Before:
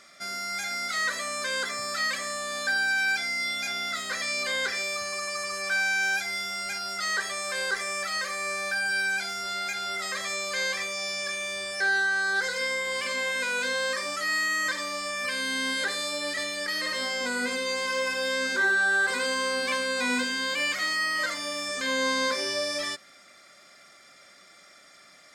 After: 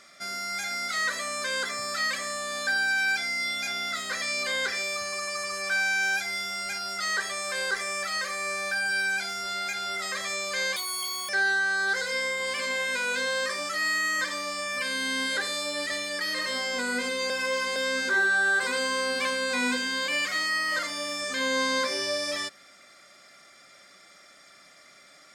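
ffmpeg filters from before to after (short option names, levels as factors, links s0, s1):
-filter_complex "[0:a]asplit=5[s0][s1][s2][s3][s4];[s0]atrim=end=10.764[s5];[s1]atrim=start=10.76:end=11.76,asetpts=PTS-STARTPTS,asetrate=83349,aresample=44100,atrim=end_sample=23333,asetpts=PTS-STARTPTS[s6];[s2]atrim=start=11.756:end=17.772[s7];[s3]atrim=start=17.768:end=18.232,asetpts=PTS-STARTPTS,areverse[s8];[s4]atrim=start=18.228[s9];[s5][s6]acrossfade=d=0.004:c1=hsin:c2=hsin[s10];[s10][s7]acrossfade=d=0.004:c1=hsin:c2=hsin[s11];[s11][s8]acrossfade=d=0.004:c1=hsin:c2=hsin[s12];[s12][s9]acrossfade=d=0.004:c1=hsin:c2=hsin"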